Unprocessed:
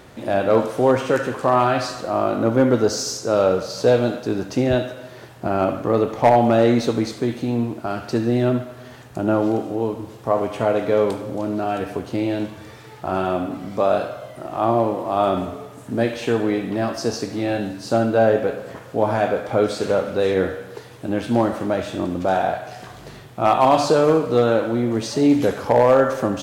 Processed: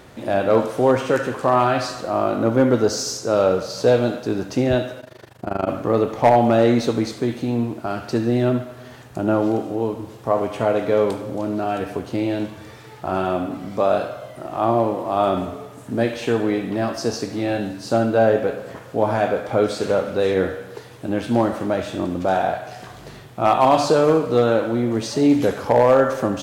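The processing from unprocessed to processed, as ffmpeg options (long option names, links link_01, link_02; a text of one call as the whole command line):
ffmpeg -i in.wav -filter_complex "[0:a]asplit=3[link_01][link_02][link_03];[link_01]afade=type=out:start_time=5:duration=0.02[link_04];[link_02]tremolo=f=25:d=0.919,afade=type=in:start_time=5:duration=0.02,afade=type=out:start_time=5.67:duration=0.02[link_05];[link_03]afade=type=in:start_time=5.67:duration=0.02[link_06];[link_04][link_05][link_06]amix=inputs=3:normalize=0" out.wav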